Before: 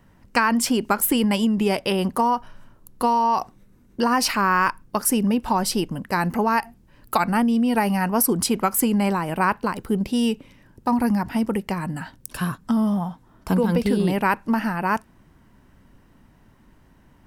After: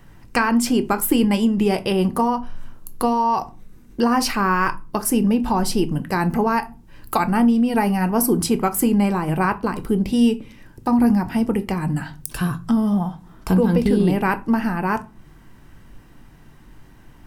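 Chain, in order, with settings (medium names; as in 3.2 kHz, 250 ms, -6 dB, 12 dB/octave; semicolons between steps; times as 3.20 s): bass shelf 400 Hz +8 dB; reverberation RT60 0.30 s, pre-delay 3 ms, DRR 7.5 dB; tape noise reduction on one side only encoder only; trim -2 dB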